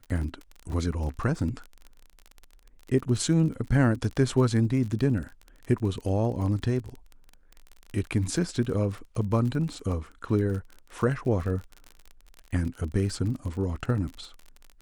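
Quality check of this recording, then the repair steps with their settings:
crackle 33 per s -34 dBFS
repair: de-click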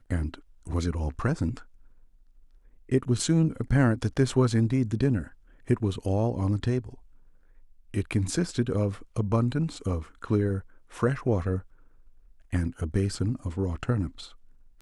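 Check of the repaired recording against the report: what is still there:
nothing left

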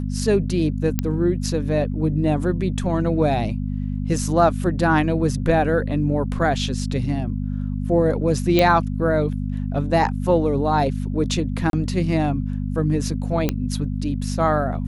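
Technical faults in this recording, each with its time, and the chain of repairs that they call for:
hum 50 Hz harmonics 5 -25 dBFS
0.99 s: pop -6 dBFS
8.59 s: pop -4 dBFS
11.70–11.73 s: dropout 32 ms
13.49 s: pop -7 dBFS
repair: de-click; de-hum 50 Hz, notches 5; interpolate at 11.70 s, 32 ms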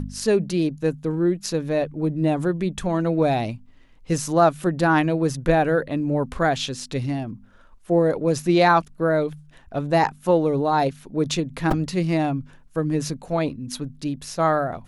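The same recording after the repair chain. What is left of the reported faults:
nothing left

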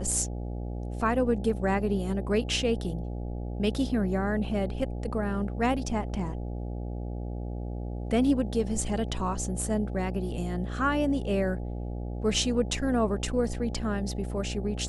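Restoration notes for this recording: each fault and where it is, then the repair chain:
buzz 60 Hz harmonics 14 -34 dBFS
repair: de-hum 60 Hz, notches 14

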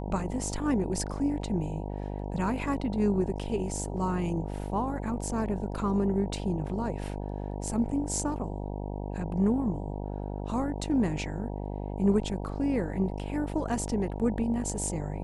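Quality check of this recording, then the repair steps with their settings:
buzz 50 Hz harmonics 19 -35 dBFS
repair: de-hum 50 Hz, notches 19

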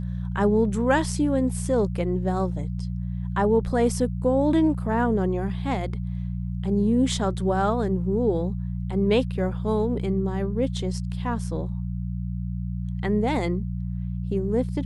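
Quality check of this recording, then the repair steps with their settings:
hum 60 Hz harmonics 3 -29 dBFS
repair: de-hum 60 Hz, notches 3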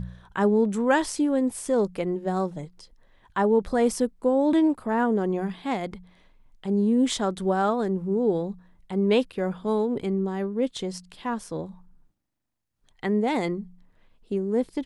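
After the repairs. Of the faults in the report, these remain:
nothing left

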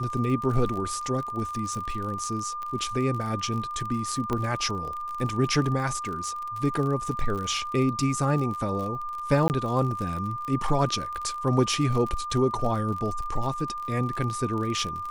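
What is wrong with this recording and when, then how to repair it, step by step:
crackle 40 per s -32 dBFS
whine 1.2 kHz -31 dBFS
2.63 s: pop -23 dBFS
4.33 s: pop -16 dBFS
9.48–9.50 s: dropout 19 ms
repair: de-click; band-stop 1.2 kHz, Q 30; interpolate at 9.48 s, 19 ms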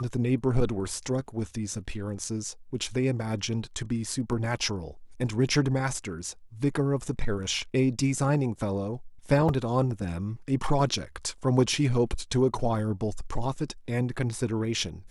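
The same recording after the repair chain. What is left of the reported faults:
4.33 s: pop

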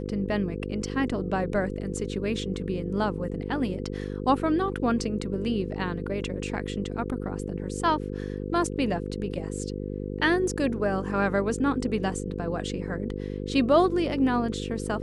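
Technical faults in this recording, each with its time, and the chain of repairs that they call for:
buzz 50 Hz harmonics 10 -33 dBFS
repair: de-hum 50 Hz, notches 10

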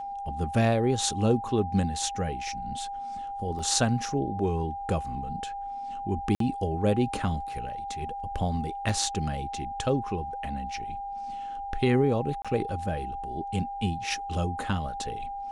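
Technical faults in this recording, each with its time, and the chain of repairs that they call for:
whine 800 Hz -33 dBFS
3.59 s: dropout 3.8 ms
6.35–6.40 s: dropout 53 ms
8.89 s: dropout 2.5 ms
12.42–12.45 s: dropout 26 ms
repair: band-stop 800 Hz, Q 30; interpolate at 3.59 s, 3.8 ms; interpolate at 6.35 s, 53 ms; interpolate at 8.89 s, 2.5 ms; interpolate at 12.42 s, 26 ms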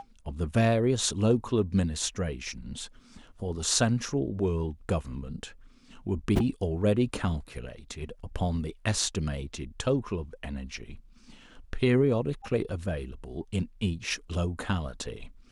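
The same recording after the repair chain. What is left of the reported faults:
nothing left

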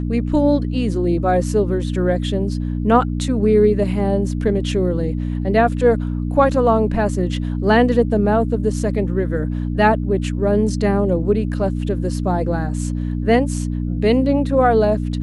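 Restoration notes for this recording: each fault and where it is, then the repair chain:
hum 60 Hz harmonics 5 -22 dBFS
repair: de-hum 60 Hz, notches 5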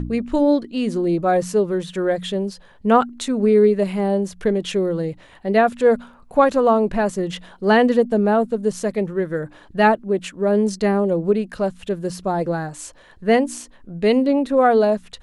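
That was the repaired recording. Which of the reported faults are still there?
nothing left

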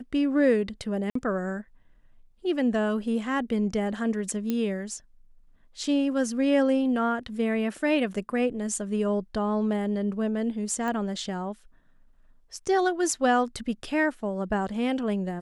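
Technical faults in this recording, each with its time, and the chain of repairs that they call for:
1.10–1.15 s: dropout 54 ms
4.50 s: pop -15 dBFS
10.88 s: pop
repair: de-click; interpolate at 1.10 s, 54 ms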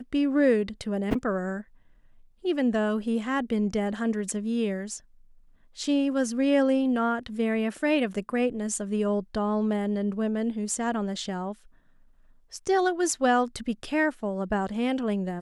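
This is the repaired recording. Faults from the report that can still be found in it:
nothing left

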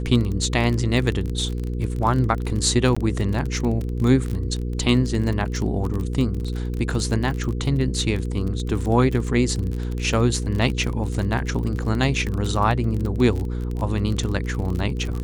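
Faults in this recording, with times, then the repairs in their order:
crackle 30 per s -25 dBFS
hum 60 Hz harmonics 8 -26 dBFS
2.95–2.96 s: dropout 15 ms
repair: de-click; de-hum 60 Hz, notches 8; interpolate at 2.95 s, 15 ms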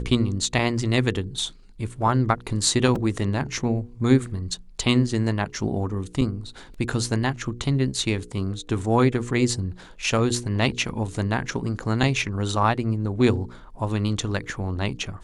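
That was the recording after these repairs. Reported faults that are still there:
nothing left

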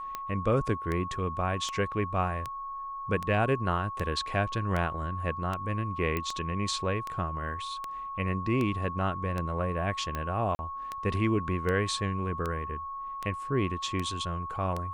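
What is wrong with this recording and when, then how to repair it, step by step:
tick 78 rpm -19 dBFS
whine 1.1 kHz -35 dBFS
6.17 s: pop -17 dBFS
10.55–10.59 s: dropout 40 ms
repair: de-click; band-stop 1.1 kHz, Q 30; interpolate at 10.55 s, 40 ms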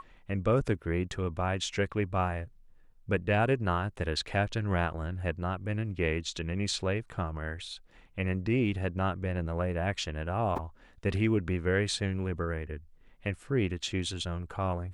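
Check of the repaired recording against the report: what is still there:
nothing left

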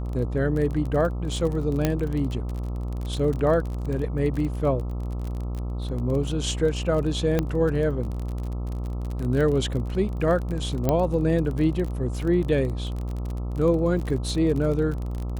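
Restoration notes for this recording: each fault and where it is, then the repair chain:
buzz 60 Hz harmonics 22 -29 dBFS
crackle 28 per s -29 dBFS
1.85 s: pop -8 dBFS
7.39 s: pop -10 dBFS
10.89 s: pop -9 dBFS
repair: de-click; de-hum 60 Hz, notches 22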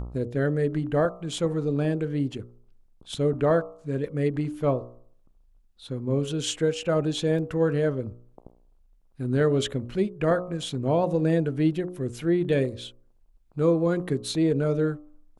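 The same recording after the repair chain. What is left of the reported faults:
7.39 s: pop

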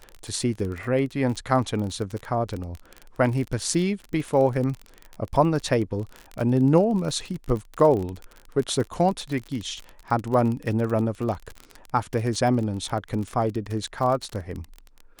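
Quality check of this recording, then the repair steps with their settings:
crackle 31 per s -28 dBFS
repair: de-click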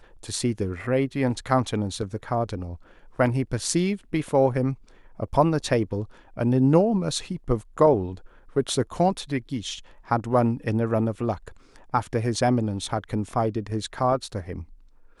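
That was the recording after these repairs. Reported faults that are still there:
nothing left

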